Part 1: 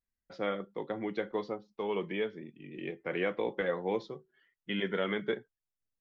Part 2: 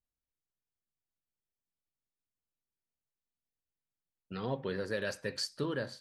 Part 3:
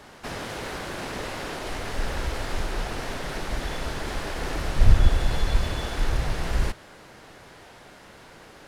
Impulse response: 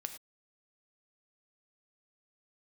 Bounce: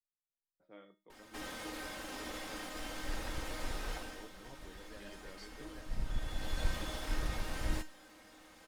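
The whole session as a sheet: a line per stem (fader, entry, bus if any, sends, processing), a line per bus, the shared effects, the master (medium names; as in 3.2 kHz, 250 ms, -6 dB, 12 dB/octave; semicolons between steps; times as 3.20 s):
-11.5 dB, 0.30 s, no send, level-controlled noise filter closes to 990 Hz, open at -32 dBFS
-8.5 dB, 0.00 s, no send, none
+1.5 dB, 1.10 s, no send, comb filter that takes the minimum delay 3.8 ms; treble shelf 7.9 kHz +5 dB; auto duck -11 dB, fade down 0.35 s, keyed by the second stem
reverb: none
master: feedback comb 310 Hz, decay 0.3 s, harmonics all, mix 80%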